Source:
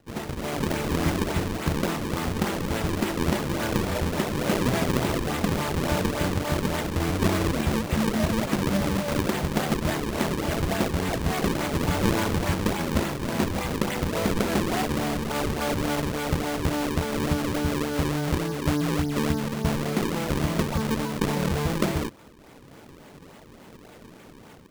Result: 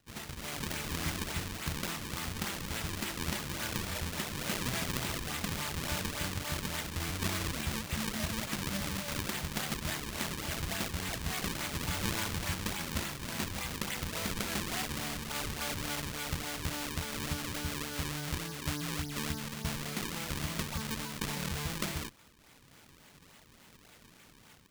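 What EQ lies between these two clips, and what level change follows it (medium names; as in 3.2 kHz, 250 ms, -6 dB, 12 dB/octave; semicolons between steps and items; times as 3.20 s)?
amplifier tone stack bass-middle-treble 5-5-5; +4.0 dB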